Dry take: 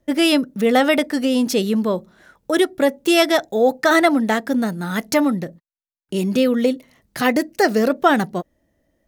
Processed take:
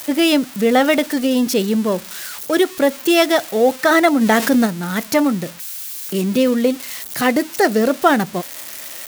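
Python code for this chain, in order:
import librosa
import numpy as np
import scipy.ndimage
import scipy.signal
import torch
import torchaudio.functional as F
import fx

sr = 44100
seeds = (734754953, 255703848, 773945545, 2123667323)

y = x + 0.5 * 10.0 ** (-16.5 / 20.0) * np.diff(np.sign(x), prepend=np.sign(x[:1]))
y = fx.high_shelf(y, sr, hz=5500.0, db=-6.0)
y = fx.env_flatten(y, sr, amount_pct=50, at=(4.2, 4.65), fade=0.02)
y = F.gain(torch.from_numpy(y), 1.5).numpy()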